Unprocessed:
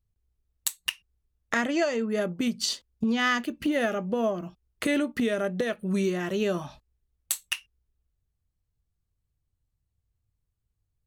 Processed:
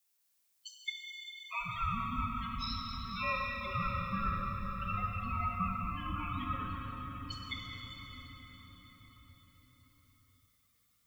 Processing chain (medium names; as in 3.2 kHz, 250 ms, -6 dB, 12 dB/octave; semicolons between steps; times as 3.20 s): recorder AGC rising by 15 dB/s; elliptic band-pass 500–6200 Hz, stop band 40 dB; treble shelf 2.2 kHz +4.5 dB; loudest bins only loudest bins 4; added noise blue -69 dBFS; ring modulator 680 Hz; bucket-brigade echo 153 ms, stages 2048, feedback 84%, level -21 dB; reverberation RT60 5.8 s, pre-delay 3 ms, DRR -1.5 dB; trim -5.5 dB